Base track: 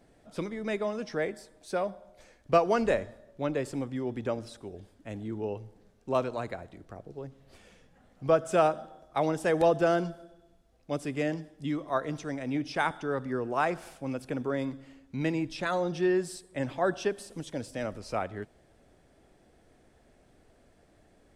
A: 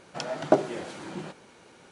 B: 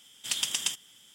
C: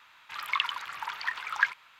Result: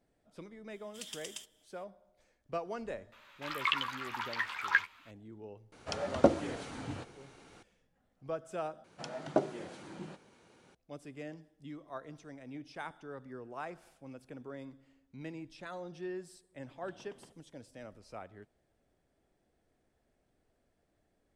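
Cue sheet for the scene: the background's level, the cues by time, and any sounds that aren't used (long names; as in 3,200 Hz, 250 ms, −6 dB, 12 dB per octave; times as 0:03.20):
base track −14.5 dB
0:00.70: mix in B −16 dB
0:03.12: mix in C −3.5 dB + double-tracking delay 13 ms −6 dB
0:05.72: mix in A −3.5 dB + frequency shifter −63 Hz
0:08.84: overwrite with A −10 dB + low-shelf EQ 270 Hz +4.5 dB
0:16.57: mix in B −5 dB + Chebyshev low-pass filter 560 Hz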